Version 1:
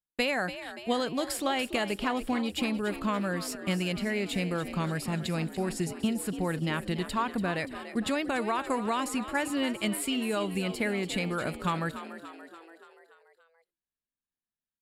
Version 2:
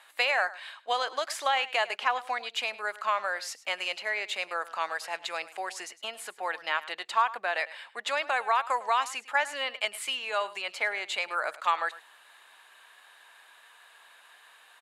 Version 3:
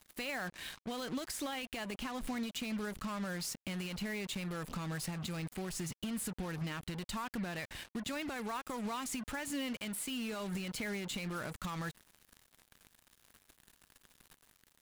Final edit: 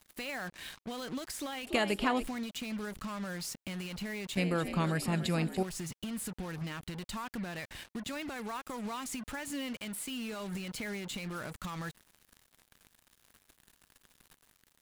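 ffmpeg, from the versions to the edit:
-filter_complex "[0:a]asplit=2[s0][s1];[2:a]asplit=3[s2][s3][s4];[s2]atrim=end=1.672[s5];[s0]atrim=start=1.668:end=2.242[s6];[s3]atrim=start=2.238:end=4.372[s7];[s1]atrim=start=4.368:end=5.632[s8];[s4]atrim=start=5.628[s9];[s5][s6]acrossfade=d=0.004:c1=hsin:c2=hsin[s10];[s10][s7]acrossfade=d=0.004:c1=hsin:c2=hsin[s11];[s11][s8]acrossfade=d=0.004:c1=hsin:c2=hsin[s12];[s12][s9]acrossfade=d=0.004:c1=hsin:c2=hsin"

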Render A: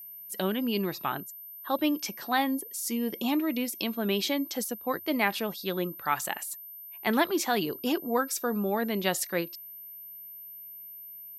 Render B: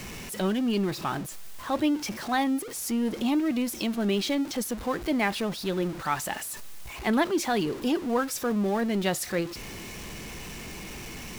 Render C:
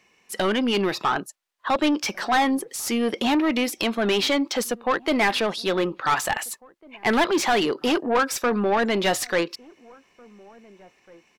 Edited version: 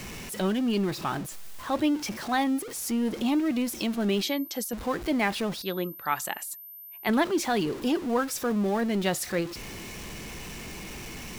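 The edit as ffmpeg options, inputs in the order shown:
-filter_complex "[0:a]asplit=2[s0][s1];[1:a]asplit=3[s2][s3][s4];[s2]atrim=end=4.232[s5];[s0]atrim=start=4.228:end=4.732[s6];[s3]atrim=start=4.728:end=5.622[s7];[s1]atrim=start=5.618:end=7.092[s8];[s4]atrim=start=7.088[s9];[s5][s6]acrossfade=d=0.004:c1=hsin:c2=hsin[s10];[s10][s7]acrossfade=d=0.004:c1=hsin:c2=hsin[s11];[s11][s8]acrossfade=d=0.004:c1=hsin:c2=hsin[s12];[s12][s9]acrossfade=d=0.004:c1=hsin:c2=hsin"

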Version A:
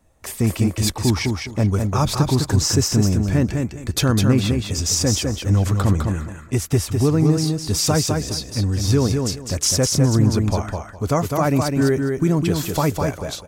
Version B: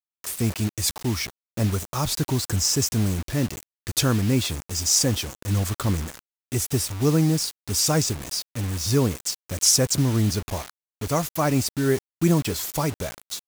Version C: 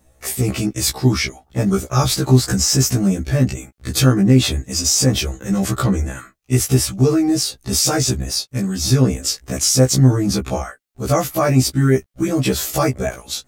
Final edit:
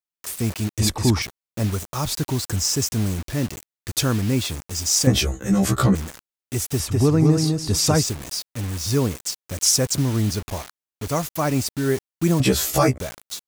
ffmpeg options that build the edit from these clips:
-filter_complex "[0:a]asplit=2[s0][s1];[2:a]asplit=2[s2][s3];[1:a]asplit=5[s4][s5][s6][s7][s8];[s4]atrim=end=0.792[s9];[s0]atrim=start=0.788:end=1.222[s10];[s5]atrim=start=1.218:end=5.072[s11];[s2]atrim=start=5.068:end=5.952[s12];[s6]atrim=start=5.948:end=6.802[s13];[s1]atrim=start=6.798:end=8.032[s14];[s7]atrim=start=8.028:end=12.402[s15];[s3]atrim=start=12.398:end=12.982[s16];[s8]atrim=start=12.978[s17];[s9][s10]acrossfade=d=0.004:c1=hsin:c2=hsin[s18];[s18][s11]acrossfade=d=0.004:c1=hsin:c2=hsin[s19];[s19][s12]acrossfade=d=0.004:c1=hsin:c2=hsin[s20];[s20][s13]acrossfade=d=0.004:c1=hsin:c2=hsin[s21];[s21][s14]acrossfade=d=0.004:c1=hsin:c2=hsin[s22];[s22][s15]acrossfade=d=0.004:c1=hsin:c2=hsin[s23];[s23][s16]acrossfade=d=0.004:c1=hsin:c2=hsin[s24];[s24][s17]acrossfade=d=0.004:c1=hsin:c2=hsin"

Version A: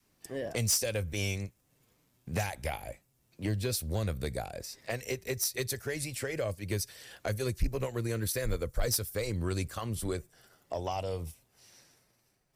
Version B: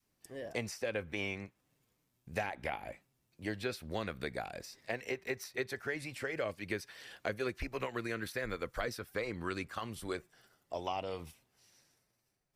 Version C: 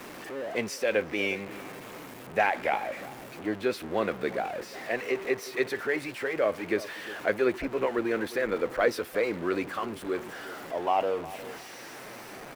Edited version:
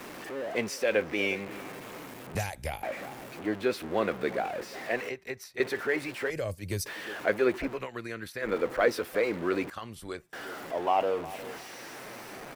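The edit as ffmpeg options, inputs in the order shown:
-filter_complex "[0:a]asplit=2[s0][s1];[1:a]asplit=3[s2][s3][s4];[2:a]asplit=6[s5][s6][s7][s8][s9][s10];[s5]atrim=end=2.352[s11];[s0]atrim=start=2.348:end=2.832[s12];[s6]atrim=start=2.828:end=5.092[s13];[s2]atrim=start=5.088:end=5.602[s14];[s7]atrim=start=5.598:end=6.302[s15];[s1]atrim=start=6.298:end=6.862[s16];[s8]atrim=start=6.858:end=7.81[s17];[s3]atrim=start=7.71:end=8.48[s18];[s9]atrim=start=8.38:end=9.702[s19];[s4]atrim=start=9.698:end=10.332[s20];[s10]atrim=start=10.328[s21];[s11][s12]acrossfade=d=0.004:c1=hsin:c2=hsin[s22];[s22][s13]acrossfade=d=0.004:c1=hsin:c2=hsin[s23];[s23][s14]acrossfade=d=0.004:c1=hsin:c2=hsin[s24];[s24][s15]acrossfade=d=0.004:c1=hsin:c2=hsin[s25];[s25][s16]acrossfade=d=0.004:c1=hsin:c2=hsin[s26];[s26][s17]acrossfade=d=0.004:c1=hsin:c2=hsin[s27];[s27][s18]acrossfade=d=0.1:c1=tri:c2=tri[s28];[s28][s19]acrossfade=d=0.1:c1=tri:c2=tri[s29];[s29][s20]acrossfade=d=0.004:c1=hsin:c2=hsin[s30];[s30][s21]acrossfade=d=0.004:c1=hsin:c2=hsin"

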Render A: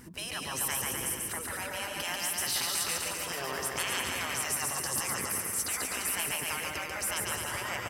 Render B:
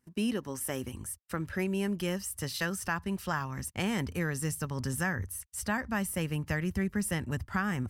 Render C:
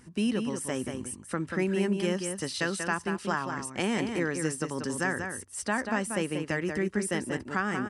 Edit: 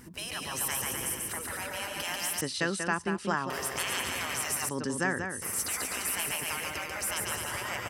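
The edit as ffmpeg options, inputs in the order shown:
-filter_complex "[2:a]asplit=2[s0][s1];[0:a]asplit=3[s2][s3][s4];[s2]atrim=end=2.412[s5];[s0]atrim=start=2.408:end=3.502[s6];[s3]atrim=start=3.498:end=4.692[s7];[s1]atrim=start=4.688:end=5.422[s8];[s4]atrim=start=5.418[s9];[s5][s6]acrossfade=d=0.004:c1=hsin:c2=hsin[s10];[s10][s7]acrossfade=d=0.004:c1=hsin:c2=hsin[s11];[s11][s8]acrossfade=d=0.004:c1=hsin:c2=hsin[s12];[s12][s9]acrossfade=d=0.004:c1=hsin:c2=hsin"

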